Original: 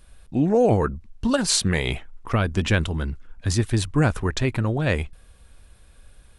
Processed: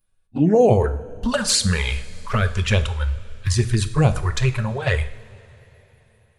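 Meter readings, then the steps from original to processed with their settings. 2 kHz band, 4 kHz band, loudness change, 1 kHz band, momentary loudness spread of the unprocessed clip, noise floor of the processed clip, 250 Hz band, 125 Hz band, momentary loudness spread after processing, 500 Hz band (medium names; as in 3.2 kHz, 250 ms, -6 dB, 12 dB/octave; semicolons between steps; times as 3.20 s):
+1.5 dB, +2.5 dB, +2.5 dB, +2.0 dB, 10 LU, -61 dBFS, 0.0 dB, +3.5 dB, 11 LU, +3.0 dB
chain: spectral noise reduction 23 dB; touch-sensitive flanger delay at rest 9.8 ms, full sweep at -16 dBFS; two-slope reverb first 0.57 s, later 4 s, from -18 dB, DRR 8.5 dB; trim +5 dB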